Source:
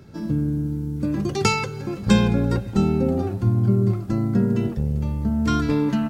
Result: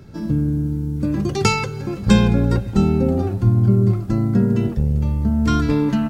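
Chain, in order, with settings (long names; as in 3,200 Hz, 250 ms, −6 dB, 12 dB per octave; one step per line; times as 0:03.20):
low-shelf EQ 71 Hz +8.5 dB
level +2 dB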